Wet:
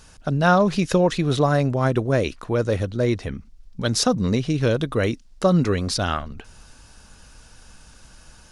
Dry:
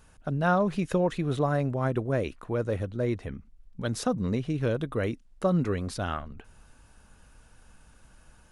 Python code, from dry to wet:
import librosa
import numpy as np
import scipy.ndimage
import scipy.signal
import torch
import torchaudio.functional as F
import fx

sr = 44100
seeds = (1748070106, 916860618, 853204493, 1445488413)

y = fx.peak_eq(x, sr, hz=5100.0, db=10.5, octaves=1.2)
y = y * librosa.db_to_amplitude(7.0)